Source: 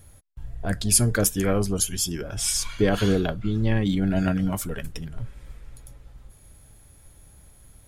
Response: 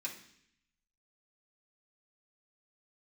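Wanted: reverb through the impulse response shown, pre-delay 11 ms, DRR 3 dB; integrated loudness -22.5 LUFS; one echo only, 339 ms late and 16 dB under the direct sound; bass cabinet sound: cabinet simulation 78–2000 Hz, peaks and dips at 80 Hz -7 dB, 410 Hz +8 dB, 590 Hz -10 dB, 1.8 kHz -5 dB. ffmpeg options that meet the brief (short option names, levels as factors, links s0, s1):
-filter_complex "[0:a]aecho=1:1:339:0.158,asplit=2[s0][s1];[1:a]atrim=start_sample=2205,adelay=11[s2];[s1][s2]afir=irnorm=-1:irlink=0,volume=0.708[s3];[s0][s3]amix=inputs=2:normalize=0,highpass=f=78:w=0.5412,highpass=f=78:w=1.3066,equalizer=f=80:t=q:w=4:g=-7,equalizer=f=410:t=q:w=4:g=8,equalizer=f=590:t=q:w=4:g=-10,equalizer=f=1800:t=q:w=4:g=-5,lowpass=f=2000:w=0.5412,lowpass=f=2000:w=1.3066,volume=1.12"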